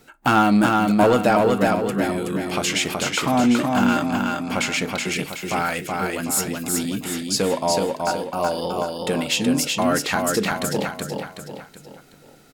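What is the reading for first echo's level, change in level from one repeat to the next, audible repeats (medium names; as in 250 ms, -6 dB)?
-3.0 dB, -7.0 dB, 4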